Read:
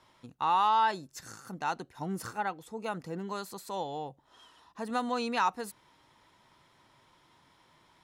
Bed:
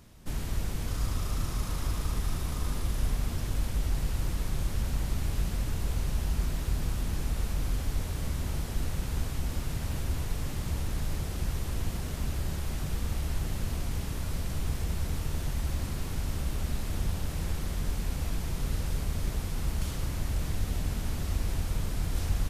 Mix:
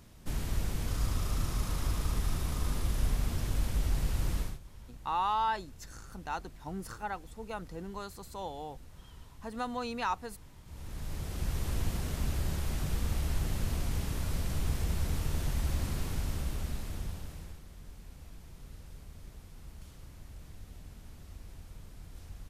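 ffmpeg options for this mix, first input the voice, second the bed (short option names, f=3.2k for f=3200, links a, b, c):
-filter_complex "[0:a]adelay=4650,volume=-4.5dB[a];[1:a]volume=19dB,afade=t=out:st=4.38:d=0.21:silence=0.105925,afade=t=in:st=10.65:d=1.04:silence=0.1,afade=t=out:st=15.98:d=1.64:silence=0.133352[b];[a][b]amix=inputs=2:normalize=0"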